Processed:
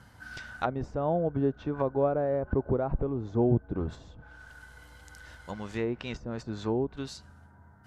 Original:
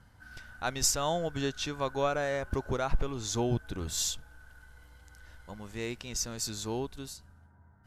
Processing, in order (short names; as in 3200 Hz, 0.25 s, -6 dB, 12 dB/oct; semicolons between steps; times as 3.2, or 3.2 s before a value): treble ducked by the level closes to 570 Hz, closed at -30 dBFS; HPF 100 Hz 6 dB/oct; gain +7 dB